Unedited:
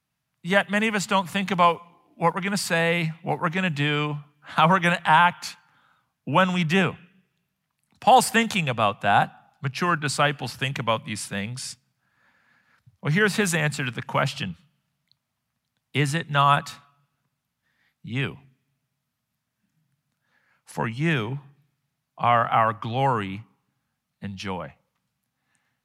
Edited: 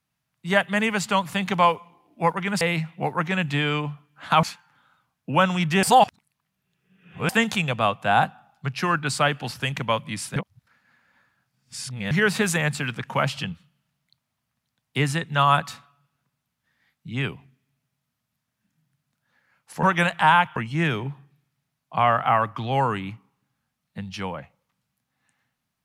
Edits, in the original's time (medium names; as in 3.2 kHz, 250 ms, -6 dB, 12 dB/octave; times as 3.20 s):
2.61–2.87 s: delete
4.69–5.42 s: move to 20.82 s
6.82–8.28 s: reverse
11.35–13.10 s: reverse